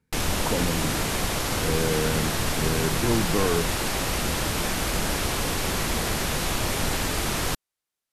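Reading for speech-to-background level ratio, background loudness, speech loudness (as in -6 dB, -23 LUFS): -3.0 dB, -26.0 LUFS, -29.0 LUFS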